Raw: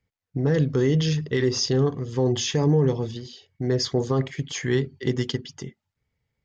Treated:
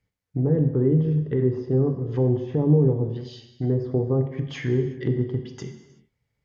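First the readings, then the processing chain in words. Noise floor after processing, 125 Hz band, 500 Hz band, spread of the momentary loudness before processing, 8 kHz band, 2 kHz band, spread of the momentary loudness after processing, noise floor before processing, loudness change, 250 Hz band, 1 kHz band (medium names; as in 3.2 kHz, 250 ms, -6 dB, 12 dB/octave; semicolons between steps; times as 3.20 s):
-79 dBFS, +2.0 dB, 0.0 dB, 13 LU, no reading, -8.5 dB, 12 LU, -83 dBFS, +0.5 dB, +1.5 dB, -6.0 dB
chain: low-pass that closes with the level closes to 620 Hz, closed at -22 dBFS; gated-style reverb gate 410 ms falling, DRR 6 dB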